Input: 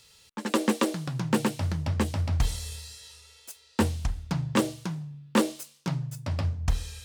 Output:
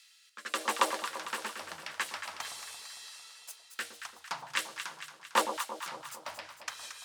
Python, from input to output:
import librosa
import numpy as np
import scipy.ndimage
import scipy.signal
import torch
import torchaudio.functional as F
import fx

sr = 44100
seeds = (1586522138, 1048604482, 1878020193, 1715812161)

y = fx.filter_lfo_highpass(x, sr, shape='saw_down', hz=1.1, low_hz=800.0, high_hz=1800.0, q=1.7)
y = fx.rotary_switch(y, sr, hz=0.85, then_hz=5.5, switch_at_s=4.43)
y = fx.echo_alternate(y, sr, ms=113, hz=1000.0, feedback_pct=75, wet_db=-6)